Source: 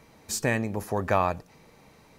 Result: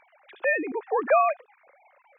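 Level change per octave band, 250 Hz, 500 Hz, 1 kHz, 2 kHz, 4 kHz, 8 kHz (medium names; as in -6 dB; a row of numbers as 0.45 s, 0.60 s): -5.0 dB, +4.5 dB, +3.5 dB, +4.5 dB, under -15 dB, under -40 dB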